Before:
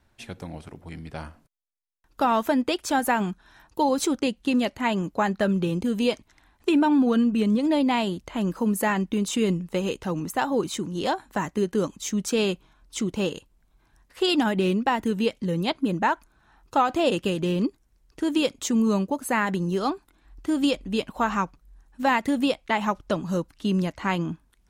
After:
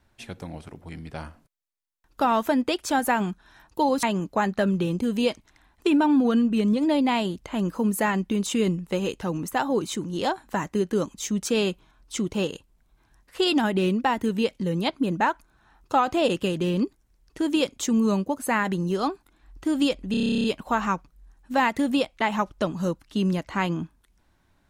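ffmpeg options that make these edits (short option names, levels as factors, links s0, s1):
-filter_complex "[0:a]asplit=13[s0][s1][s2][s3][s4][s5][s6][s7][s8][s9][s10][s11][s12];[s0]atrim=end=4.032[s13];[s1]atrim=start=4.848:end=20.962[s14];[s2]atrim=start=20.928:end=20.962[s15];[s3]atrim=start=20.928:end=20.962[s16];[s4]atrim=start=20.928:end=20.962[s17];[s5]atrim=start=20.928:end=20.962[s18];[s6]atrim=start=20.928:end=20.962[s19];[s7]atrim=start=20.928:end=20.962[s20];[s8]atrim=start=20.928:end=20.962[s21];[s9]atrim=start=20.928:end=20.962[s22];[s10]atrim=start=20.928:end=20.962[s23];[s11]atrim=start=20.928:end=20.962[s24];[s12]atrim=start=20.928[s25];[s13][s14]acrossfade=d=0.004:c1=hsin:c2=hsin[s26];[s26][s15]acrossfade=d=0.004:c1=hsin:c2=hsin[s27];[s27][s16]acrossfade=d=0.004:c1=hsin:c2=hsin[s28];[s28][s17]acrossfade=d=0.004:c1=hsin:c2=hsin[s29];[s29][s18]acrossfade=d=0.004:c1=hsin:c2=hsin[s30];[s30][s19]acrossfade=d=0.004:c1=hsin:c2=hsin[s31];[s31][s20]acrossfade=d=0.004:c1=hsin:c2=hsin[s32];[s32][s21]acrossfade=d=0.004:c1=hsin:c2=hsin[s33];[s33][s22]acrossfade=d=0.004:c1=hsin:c2=hsin[s34];[s34][s23]acrossfade=d=0.004:c1=hsin:c2=hsin[s35];[s35][s24]acrossfade=d=0.004:c1=hsin:c2=hsin[s36];[s36][s25]acrossfade=d=0.004:c1=hsin:c2=hsin"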